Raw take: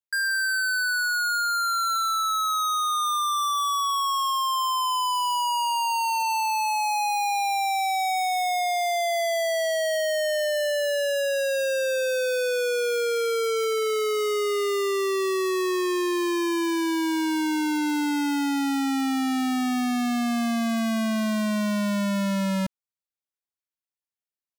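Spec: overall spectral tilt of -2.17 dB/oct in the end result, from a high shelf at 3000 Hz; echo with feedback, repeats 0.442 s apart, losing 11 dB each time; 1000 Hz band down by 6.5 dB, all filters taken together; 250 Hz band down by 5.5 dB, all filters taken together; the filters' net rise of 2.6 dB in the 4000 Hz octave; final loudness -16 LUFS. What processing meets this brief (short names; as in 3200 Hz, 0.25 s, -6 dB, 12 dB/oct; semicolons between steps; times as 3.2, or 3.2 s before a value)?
bell 250 Hz -6.5 dB; bell 1000 Hz -8 dB; high shelf 3000 Hz -5 dB; bell 4000 Hz +7.5 dB; feedback echo 0.442 s, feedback 28%, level -11 dB; gain +11 dB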